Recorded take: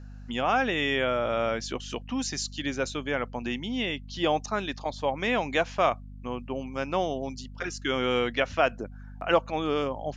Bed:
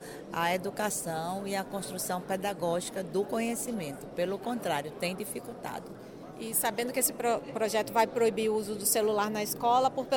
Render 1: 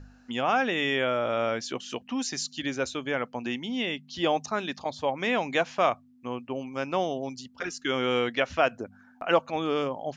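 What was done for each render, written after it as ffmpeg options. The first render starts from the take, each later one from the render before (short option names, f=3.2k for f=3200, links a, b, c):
-af "bandreject=f=50:t=h:w=4,bandreject=f=100:t=h:w=4,bandreject=f=150:t=h:w=4,bandreject=f=200:t=h:w=4"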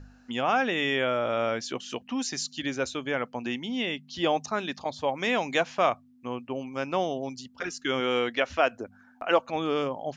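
-filter_complex "[0:a]asettb=1/sr,asplit=3[a][b][c];[a]atrim=end=5.094[d];[b]atrim=start=5.09:end=5.6,asetpts=PTS-STARTPTS,afade=t=in:d=0.004:c=qsin,afade=t=out:st=0.506:d=0.004:c=qsin,bass=f=250:g=-1,treble=f=4k:g=6[e];[c]atrim=start=5.596[f];[d][e]acrossfade=d=0.004:c1=hsin:c2=qsin[g];[g][f]acrossfade=d=0.004:c1=qsin:c2=hsin,asettb=1/sr,asplit=3[h][i][j];[h]atrim=end=8.004[k];[i]atrim=start=8:end=9.48,asetpts=PTS-STARTPTS,afade=t=in:d=0.004:c=qsin,afade=t=out:st=1.476:d=0.004:c=qsin,equalizer=f=150:w=2.7:g=-12[l];[j]atrim=start=9.476[m];[k][l]acrossfade=d=0.004:c1=hsin:c2=qsin[n];[n][m]acrossfade=d=0.004:c1=qsin:c2=hsin"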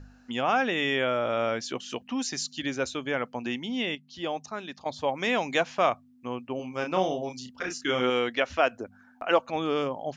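-filter_complex "[0:a]asettb=1/sr,asplit=3[a][b][c];[a]atrim=end=6.564[d];[b]atrim=start=6.56:end=8.1,asetpts=PTS-STARTPTS,afade=t=in:d=0.004:c=qsin,afade=t=out:st=1.536:d=0.004:c=qsin,asplit=2[e][f];[f]adelay=32,volume=-5dB[g];[e][g]amix=inputs=2:normalize=0,atrim=end_sample=67914[h];[c]atrim=start=8.096[i];[d][h]acrossfade=d=0.004:c1=hsin:c2=qsin[j];[j][i]acrossfade=d=0.004:c1=qsin:c2=hsin,asplit=3[k][l][m];[k]atrim=end=3.952[n];[l]atrim=start=3.948:end=4.862,asetpts=PTS-STARTPTS,volume=-6.5dB[o];[m]atrim=start=4.858[p];[n][o]acrossfade=d=0.004:c1=hsin:c2=hsin[q];[q][p]acrossfade=d=0.004:c1=hsin:c2=hsin"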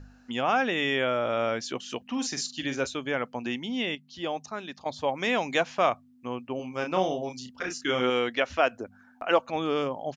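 -filter_complex "[0:a]asplit=3[a][b][c];[a]afade=t=out:st=2.06:d=0.02[d];[b]asplit=2[e][f];[f]adelay=44,volume=-9.5dB[g];[e][g]amix=inputs=2:normalize=0,afade=t=in:st=2.06:d=0.02,afade=t=out:st=2.85:d=0.02[h];[c]afade=t=in:st=2.85:d=0.02[i];[d][h][i]amix=inputs=3:normalize=0"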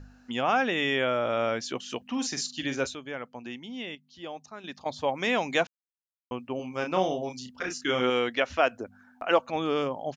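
-filter_complex "[0:a]asplit=5[a][b][c][d][e];[a]atrim=end=2.952[f];[b]atrim=start=2.948:end=4.642,asetpts=PTS-STARTPTS,volume=-7.5dB[g];[c]atrim=start=4.638:end=5.67,asetpts=PTS-STARTPTS,afade=t=out:st=1.028:d=0.004:c=hsin[h];[d]atrim=start=5.67:end=6.31,asetpts=PTS-STARTPTS,volume=0[i];[e]atrim=start=6.31,asetpts=PTS-STARTPTS,afade=t=in:d=0.004:c=hsin[j];[f][g]acrossfade=d=0.004:c1=hsin:c2=hsin[k];[h][i][j]concat=n=3:v=0:a=1[l];[k][l]acrossfade=d=0.004:c1=hsin:c2=hsin"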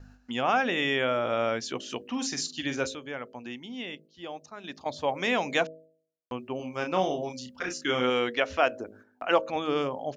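-af "agate=range=-9dB:threshold=-53dB:ratio=16:detection=peak,bandreject=f=53.31:t=h:w=4,bandreject=f=106.62:t=h:w=4,bandreject=f=159.93:t=h:w=4,bandreject=f=213.24:t=h:w=4,bandreject=f=266.55:t=h:w=4,bandreject=f=319.86:t=h:w=4,bandreject=f=373.17:t=h:w=4,bandreject=f=426.48:t=h:w=4,bandreject=f=479.79:t=h:w=4,bandreject=f=533.1:t=h:w=4,bandreject=f=586.41:t=h:w=4,bandreject=f=639.72:t=h:w=4"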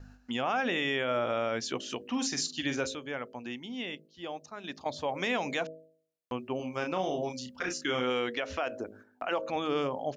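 -af "alimiter=limit=-21dB:level=0:latency=1:release=78"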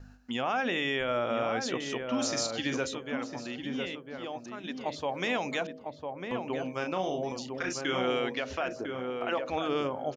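-filter_complex "[0:a]asplit=2[a][b];[b]adelay=1002,lowpass=f=1.2k:p=1,volume=-4dB,asplit=2[c][d];[d]adelay=1002,lowpass=f=1.2k:p=1,volume=0.26,asplit=2[e][f];[f]adelay=1002,lowpass=f=1.2k:p=1,volume=0.26,asplit=2[g][h];[h]adelay=1002,lowpass=f=1.2k:p=1,volume=0.26[i];[a][c][e][g][i]amix=inputs=5:normalize=0"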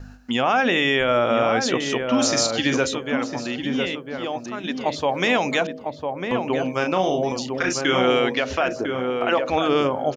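-af "volume=10.5dB"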